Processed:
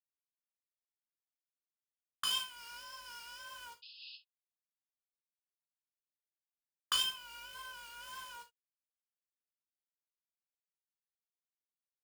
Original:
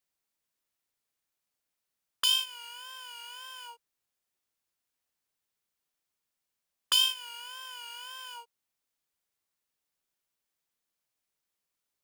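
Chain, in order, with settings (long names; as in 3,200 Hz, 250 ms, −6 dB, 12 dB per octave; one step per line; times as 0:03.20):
drawn EQ curve 190 Hz 0 dB, 510 Hz −10 dB, 740 Hz −23 dB, 1,100 Hz +2 dB, 2,700 Hz −9 dB, 10,000 Hz −7 dB, 15,000 Hz −27 dB
0:07.03–0:07.77: spectral peaks only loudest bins 16
pitch vibrato 8.6 Hz 19 cents
log-companded quantiser 4 bits
0:02.56–0:03.41: parametric band 5,200 Hz +10.5 dB 0.21 octaves
0:03.82–0:04.17: sound drawn into the spectrogram noise 2,500–5,200 Hz −52 dBFS
reverb whose tail is shaped and stops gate 90 ms falling, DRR 3 dB
amplitude modulation by smooth noise, depth 50%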